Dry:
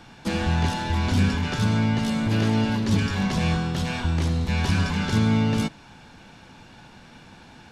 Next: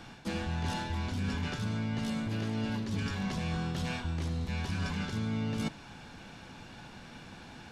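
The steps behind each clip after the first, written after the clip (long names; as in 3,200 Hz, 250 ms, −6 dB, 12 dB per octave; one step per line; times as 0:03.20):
notch filter 900 Hz, Q 25
reversed playback
downward compressor 6 to 1, threshold −30 dBFS, peak gain reduction 13.5 dB
reversed playback
level −1 dB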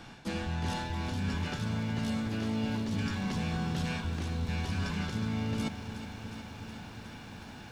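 feedback echo at a low word length 365 ms, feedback 80%, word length 10 bits, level −11.5 dB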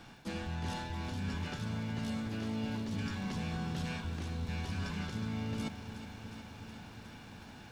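surface crackle 350 per second −53 dBFS
level −4.5 dB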